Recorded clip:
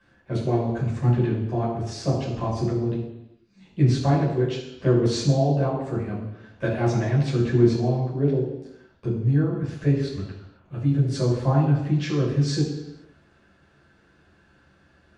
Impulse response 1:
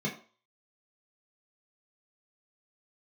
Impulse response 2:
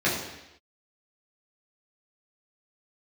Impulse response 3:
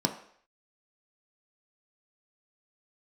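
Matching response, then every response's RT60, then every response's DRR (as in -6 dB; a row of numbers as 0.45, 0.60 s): 2; 0.40, 0.90, 0.60 s; -4.0, -8.0, 3.5 dB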